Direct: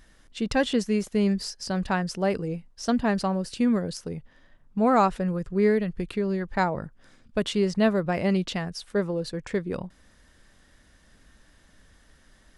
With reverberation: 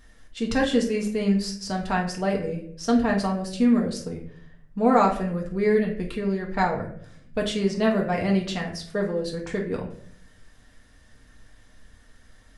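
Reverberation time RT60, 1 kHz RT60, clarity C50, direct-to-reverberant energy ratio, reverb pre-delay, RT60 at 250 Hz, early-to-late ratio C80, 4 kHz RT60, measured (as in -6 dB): 0.60 s, 0.50 s, 7.5 dB, -1.0 dB, 4 ms, 0.80 s, 12.0 dB, 0.40 s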